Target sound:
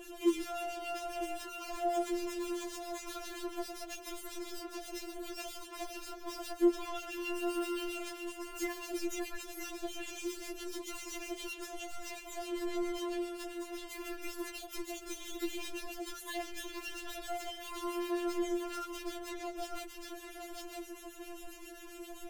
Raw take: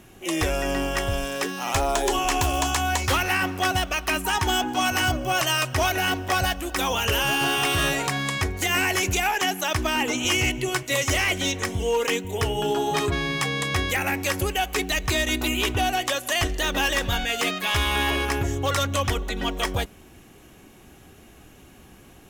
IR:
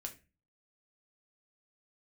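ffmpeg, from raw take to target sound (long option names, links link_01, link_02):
-filter_complex "[0:a]asoftclip=type=tanh:threshold=-31dB,asplit=2[link_01][link_02];[link_02]aecho=0:1:955:0.266[link_03];[link_01][link_03]amix=inputs=2:normalize=0,acrossover=split=1700[link_04][link_05];[link_04]aeval=exprs='val(0)*(1-0.7/2+0.7/2*cos(2*PI*7.5*n/s))':channel_layout=same[link_06];[link_05]aeval=exprs='val(0)*(1-0.7/2-0.7/2*cos(2*PI*7.5*n/s))':channel_layout=same[link_07];[link_06][link_07]amix=inputs=2:normalize=0,acrossover=split=390[link_08][link_09];[link_09]acompressor=threshold=-46dB:ratio=10[link_10];[link_08][link_10]amix=inputs=2:normalize=0,asettb=1/sr,asplit=3[link_11][link_12][link_13];[link_11]atrim=end=6.584[link_14];[link_12]atrim=start=6.58:end=7.35,asetpts=PTS-STARTPTS,afade=type=in:duration=0.004:curve=qsin,afade=type=out:start_time=0.766:duration=0.004:curve=qsin,highshelf=frequency=5100:gain=-5.5[link_15];[link_13]atrim=start=7.346[link_16];[link_14][link_15]acrossfade=duration=0.004:curve1=hsin:curve2=qsin[link_17];[link_17][link_16]acrossfade=duration=0.004:curve1=qsin:curve2=hsin,afftfilt=real='re*4*eq(mod(b,16),0)':imag='im*4*eq(mod(b,16),0)':win_size=2048:overlap=0.75,volume=7.5dB"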